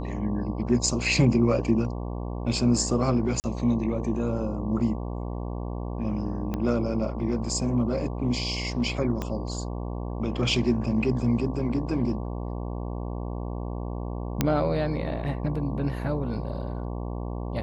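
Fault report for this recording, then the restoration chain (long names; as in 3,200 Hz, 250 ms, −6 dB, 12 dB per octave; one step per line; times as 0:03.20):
mains buzz 60 Hz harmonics 19 −32 dBFS
0:03.40–0:03.44: drop-out 39 ms
0:06.54: click −17 dBFS
0:09.22: click −16 dBFS
0:14.41: click −7 dBFS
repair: click removal
hum removal 60 Hz, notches 19
repair the gap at 0:03.40, 39 ms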